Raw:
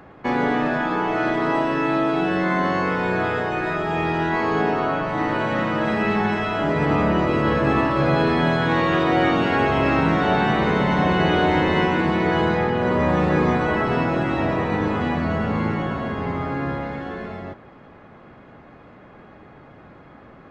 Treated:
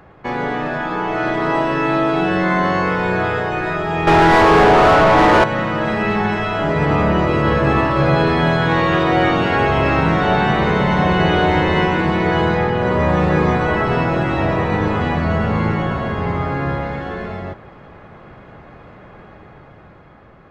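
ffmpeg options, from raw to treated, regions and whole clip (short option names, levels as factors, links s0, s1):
-filter_complex "[0:a]asettb=1/sr,asplit=3[s0][s1][s2];[s0]atrim=end=4.074[s3];[s1]atrim=start=4.07:end=5.44,asetpts=PTS-STARTPTS,afade=t=in:d=0.004:c=qsin,afade=t=out:st=1.366:d=0.004:c=qsin,tiltshelf=f=1200:g=4,asplit=2[s4][s5];[s5]highpass=f=720:p=1,volume=28.2,asoftclip=type=tanh:threshold=0.501[s6];[s4][s6]amix=inputs=2:normalize=0,lowpass=f=1600:p=1,volume=0.501[s7];[s2]atrim=start=5.436[s8];[s3][s7]acrossfade=d=0.004:c1=hsin:c2=qsin[s9];[s9][s8]acrossfade=d=0.004:c1=qsin:c2=hsin,lowshelf=f=110:g=5.5,dynaudnorm=f=230:g=11:m=1.88,equalizer=f=260:t=o:w=0.48:g=-6.5"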